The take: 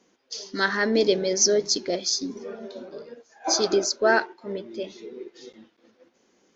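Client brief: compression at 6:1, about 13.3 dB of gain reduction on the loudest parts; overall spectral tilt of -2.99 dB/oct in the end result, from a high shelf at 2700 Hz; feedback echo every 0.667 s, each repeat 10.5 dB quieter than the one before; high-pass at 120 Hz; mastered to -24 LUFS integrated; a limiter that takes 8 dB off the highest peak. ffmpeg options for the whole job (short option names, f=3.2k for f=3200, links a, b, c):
-af "highpass=120,highshelf=f=2.7k:g=-7,acompressor=threshold=-31dB:ratio=6,alimiter=level_in=5.5dB:limit=-24dB:level=0:latency=1,volume=-5.5dB,aecho=1:1:667|1334|2001:0.299|0.0896|0.0269,volume=15dB"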